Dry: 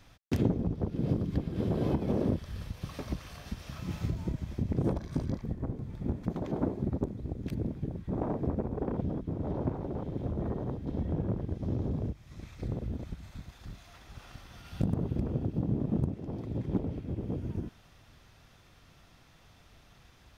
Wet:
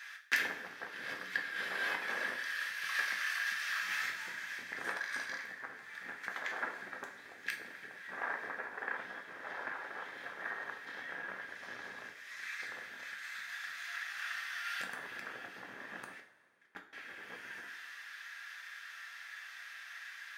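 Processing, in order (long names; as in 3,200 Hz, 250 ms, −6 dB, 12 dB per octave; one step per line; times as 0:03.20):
high-pass with resonance 1,700 Hz, resonance Q 7.8
0:16.20–0:16.93: noise gate −47 dBFS, range −34 dB
coupled-rooms reverb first 0.4 s, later 2.2 s, from −18 dB, DRR 2 dB
level +5.5 dB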